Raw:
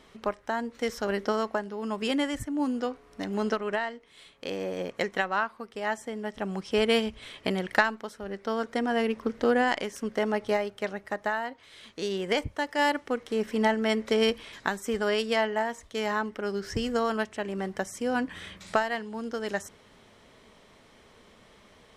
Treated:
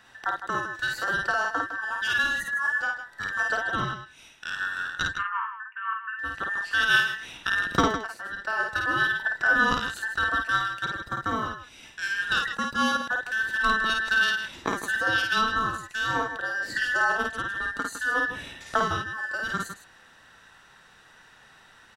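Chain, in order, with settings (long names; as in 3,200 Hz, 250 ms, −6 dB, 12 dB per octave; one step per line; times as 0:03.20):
frequency inversion band by band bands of 2,000 Hz
0:05.13–0:06.19: Chebyshev band-pass filter 960–2,800 Hz, order 5
loudspeakers that aren't time-aligned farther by 18 metres −3 dB, 54 metres −10 dB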